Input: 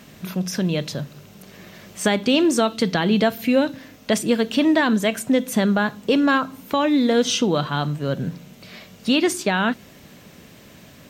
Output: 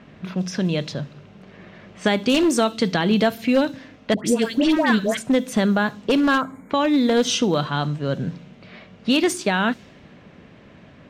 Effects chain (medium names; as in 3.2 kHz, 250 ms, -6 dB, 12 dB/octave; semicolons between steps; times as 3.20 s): one-sided wavefolder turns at -13.5 dBFS; 6.41–6.71 s: spectral selection erased 2.4–6.6 kHz; level-controlled noise filter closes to 2.2 kHz, open at -15 dBFS; 4.14–5.17 s: phase dispersion highs, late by 117 ms, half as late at 1.2 kHz; feedback echo behind a high-pass 72 ms, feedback 33%, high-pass 5.2 kHz, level -22 dB